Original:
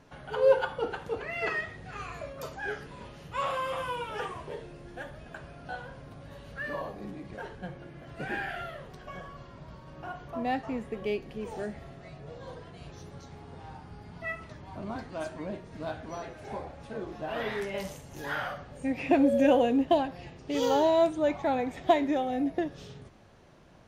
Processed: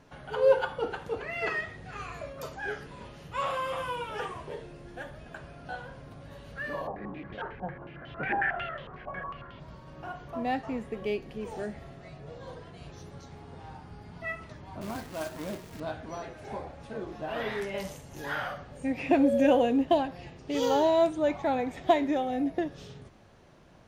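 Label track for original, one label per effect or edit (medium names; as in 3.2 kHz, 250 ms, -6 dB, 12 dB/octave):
6.870000	9.600000	step-sequenced low-pass 11 Hz 870–3300 Hz
14.810000	15.800000	companded quantiser 4-bit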